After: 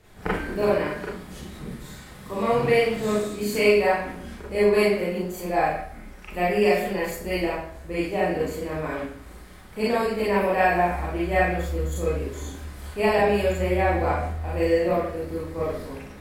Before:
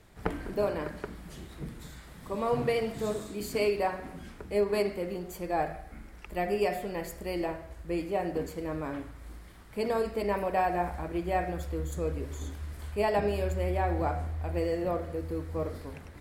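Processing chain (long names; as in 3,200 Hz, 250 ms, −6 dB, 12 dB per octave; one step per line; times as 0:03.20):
four-comb reverb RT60 0.38 s, combs from 30 ms, DRR −6 dB
dynamic equaliser 2,200 Hz, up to +6 dB, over −43 dBFS, Q 1.4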